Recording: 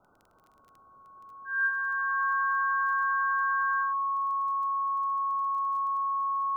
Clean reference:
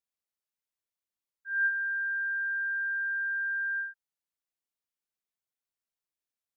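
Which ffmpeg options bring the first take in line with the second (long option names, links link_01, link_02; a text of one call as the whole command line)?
ffmpeg -i in.wav -af "adeclick=threshold=4,bandreject=frequency=1100:width=30,afftdn=noise_reduction=30:noise_floor=-60" out.wav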